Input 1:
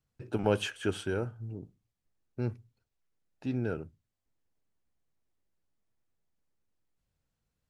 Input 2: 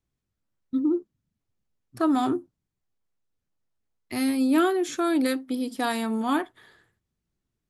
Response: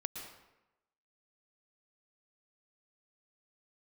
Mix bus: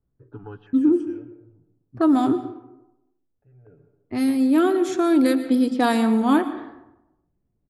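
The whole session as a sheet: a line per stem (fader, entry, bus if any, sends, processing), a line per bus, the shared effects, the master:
−1.0 dB, 0.00 s, send −19 dB, comb filter 7 ms, depth 91%; step-sequenced phaser 3 Hz 750–5,000 Hz; automatic ducking −22 dB, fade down 1.25 s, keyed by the second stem
+0.5 dB, 0.00 s, send −3.5 dB, tilt shelving filter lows +4 dB, about 700 Hz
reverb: on, RT60 0.95 s, pre-delay 106 ms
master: low-pass that shuts in the quiet parts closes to 1,000 Hz, open at −16.5 dBFS; speech leveller 0.5 s

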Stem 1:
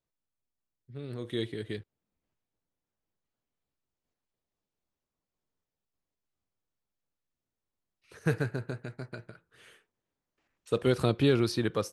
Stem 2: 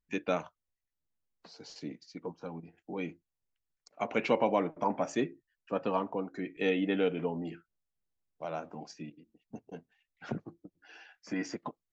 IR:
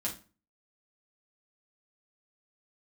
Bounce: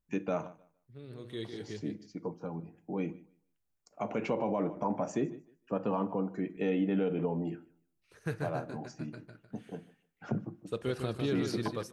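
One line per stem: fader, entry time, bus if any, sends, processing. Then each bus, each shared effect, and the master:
−8.0 dB, 0.00 s, send −20.5 dB, echo send −6.5 dB, no processing
+0.5 dB, 0.00 s, send −13.5 dB, echo send −21 dB, octave-band graphic EQ 125/2,000/4,000 Hz +6/−5/−10 dB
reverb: on, RT60 0.35 s, pre-delay 5 ms
echo: repeating echo 152 ms, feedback 19%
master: brickwall limiter −21.5 dBFS, peak gain reduction 9 dB

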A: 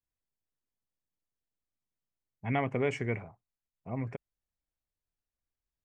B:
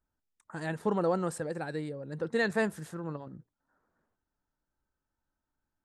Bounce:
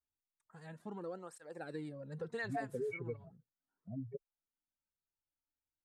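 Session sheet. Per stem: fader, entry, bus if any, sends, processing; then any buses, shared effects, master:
+1.5 dB, 0.00 s, no send, expanding power law on the bin magnitudes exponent 3.8; noise gate −47 dBFS, range −12 dB; parametric band 79 Hz −13 dB 2.7 octaves
0:01.24 −13.5 dB → 0:01.72 −5 dB → 0:02.82 −5 dB → 0:03.24 −14.5 dB, 0.00 s, no send, through-zero flanger with one copy inverted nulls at 0.36 Hz, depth 5.5 ms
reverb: not used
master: downward compressor 3 to 1, threshold −38 dBFS, peak gain reduction 9 dB

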